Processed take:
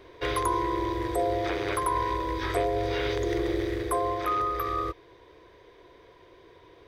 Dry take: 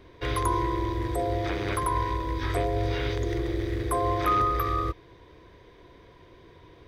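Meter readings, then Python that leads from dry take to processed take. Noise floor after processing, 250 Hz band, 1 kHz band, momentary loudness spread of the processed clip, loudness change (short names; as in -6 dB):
-55 dBFS, -0.5 dB, -0.5 dB, 3 LU, -0.5 dB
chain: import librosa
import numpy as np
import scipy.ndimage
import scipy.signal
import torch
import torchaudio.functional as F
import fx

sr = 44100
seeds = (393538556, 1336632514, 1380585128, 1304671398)

y = fx.low_shelf_res(x, sr, hz=300.0, db=-7.0, q=1.5)
y = fx.rider(y, sr, range_db=10, speed_s=0.5)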